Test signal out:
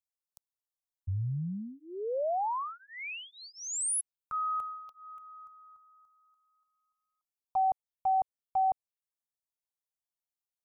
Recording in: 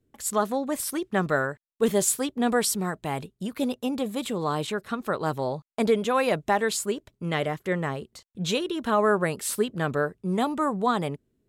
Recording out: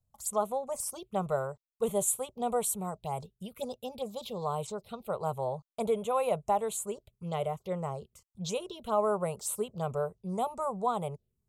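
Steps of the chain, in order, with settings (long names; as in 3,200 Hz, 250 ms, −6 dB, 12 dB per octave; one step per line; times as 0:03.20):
phaser with its sweep stopped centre 710 Hz, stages 4
phaser swept by the level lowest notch 390 Hz, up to 5,000 Hz, full sweep at −27 dBFS
level −2.5 dB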